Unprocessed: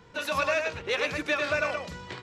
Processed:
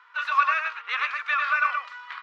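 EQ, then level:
four-pole ladder high-pass 1,100 Hz, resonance 70%
head-to-tape spacing loss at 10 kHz 21 dB
parametric band 2,500 Hz +10.5 dB 2.7 octaves
+6.0 dB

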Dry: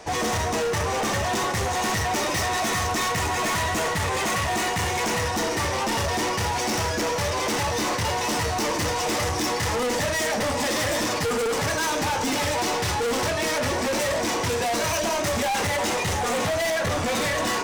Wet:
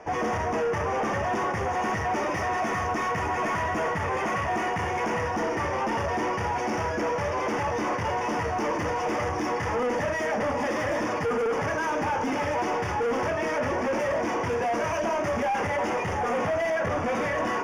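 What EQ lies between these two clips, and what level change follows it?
moving average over 11 samples
low-shelf EQ 140 Hz −7.5 dB
0.0 dB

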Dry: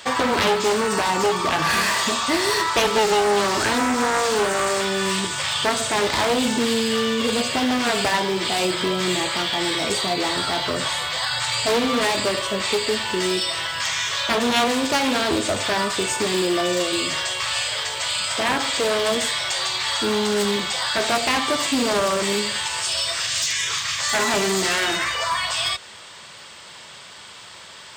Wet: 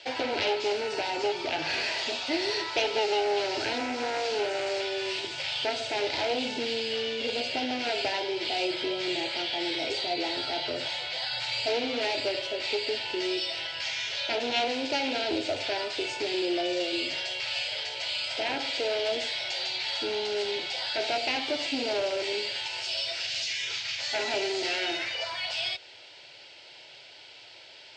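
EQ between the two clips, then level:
loudspeaker in its box 170–4,400 Hz, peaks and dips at 210 Hz −4 dB, 1,800 Hz −8 dB, 3,500 Hz −7 dB
parametric band 460 Hz −8 dB 0.95 octaves
phaser with its sweep stopped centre 470 Hz, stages 4
0.0 dB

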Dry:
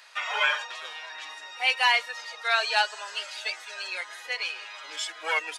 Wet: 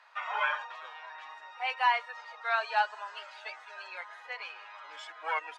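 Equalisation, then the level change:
resonant band-pass 970 Hz, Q 1.5
0.0 dB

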